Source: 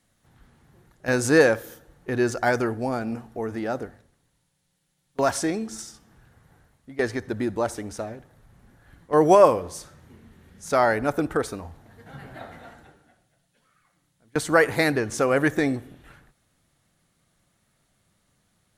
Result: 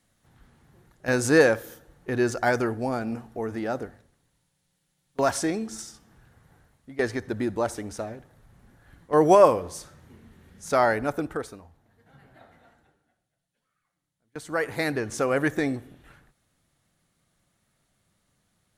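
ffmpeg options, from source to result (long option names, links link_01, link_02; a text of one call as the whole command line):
ffmpeg -i in.wav -af "volume=9dB,afade=type=out:start_time=10.85:duration=0.82:silence=0.251189,afade=type=in:start_time=14.4:duration=0.68:silence=0.316228" out.wav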